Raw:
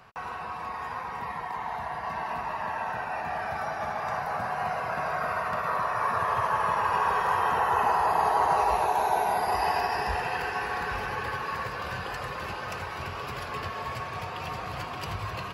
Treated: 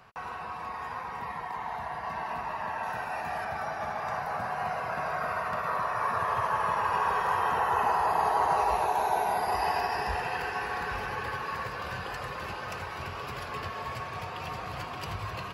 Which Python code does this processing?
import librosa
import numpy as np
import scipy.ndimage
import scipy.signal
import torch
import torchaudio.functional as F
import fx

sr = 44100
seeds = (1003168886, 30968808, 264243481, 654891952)

y = fx.high_shelf(x, sr, hz=5600.0, db=9.0, at=(2.83, 3.45))
y = y * librosa.db_to_amplitude(-2.0)